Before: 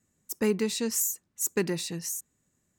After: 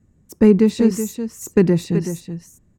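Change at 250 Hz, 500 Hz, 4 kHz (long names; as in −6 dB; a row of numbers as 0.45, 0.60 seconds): +16.0, +12.5, −1.0 decibels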